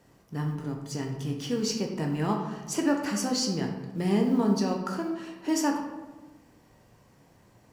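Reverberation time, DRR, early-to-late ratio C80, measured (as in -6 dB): 1.2 s, 1.0 dB, 7.5 dB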